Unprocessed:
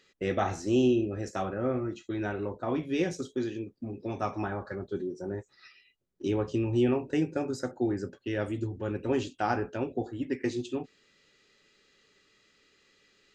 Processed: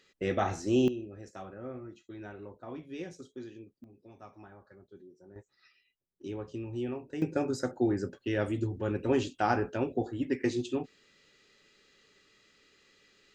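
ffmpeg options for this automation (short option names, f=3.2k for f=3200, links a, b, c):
-af "asetnsamples=n=441:p=0,asendcmd='0.88 volume volume -12dB;3.84 volume volume -19dB;5.36 volume volume -10dB;7.22 volume volume 1dB',volume=-1dB"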